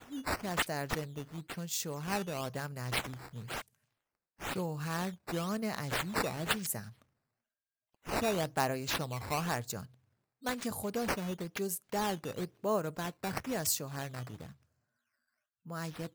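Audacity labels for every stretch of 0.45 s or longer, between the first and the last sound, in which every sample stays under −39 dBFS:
3.610000	4.420000	silence
6.880000	8.070000	silence
9.830000	10.460000	silence
14.450000	15.700000	silence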